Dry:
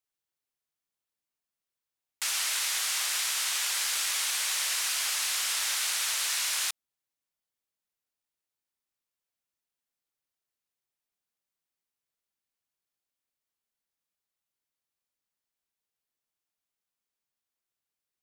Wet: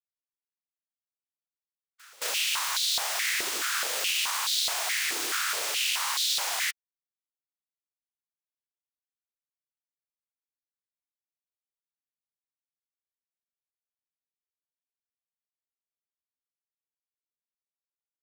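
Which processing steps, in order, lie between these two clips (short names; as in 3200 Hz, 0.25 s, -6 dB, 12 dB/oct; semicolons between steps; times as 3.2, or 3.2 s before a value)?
tracing distortion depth 0.06 ms; spectral gate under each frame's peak -15 dB weak; backlash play -50.5 dBFS; reverse echo 0.221 s -23.5 dB; stepped high-pass 4.7 Hz 360–3800 Hz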